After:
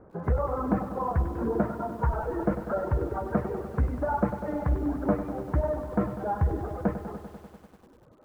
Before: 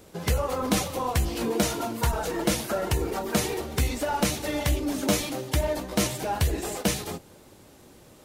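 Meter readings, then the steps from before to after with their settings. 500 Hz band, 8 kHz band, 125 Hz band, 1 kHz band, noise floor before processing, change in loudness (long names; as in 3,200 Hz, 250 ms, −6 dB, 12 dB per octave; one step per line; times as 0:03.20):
−1.0 dB, below −30 dB, 0.0 dB, −1.0 dB, −53 dBFS, −2.0 dB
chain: Butterworth low-pass 1,500 Hz 36 dB per octave
reverb reduction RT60 1.8 s
feedback echo at a low word length 98 ms, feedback 80%, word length 9 bits, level −11 dB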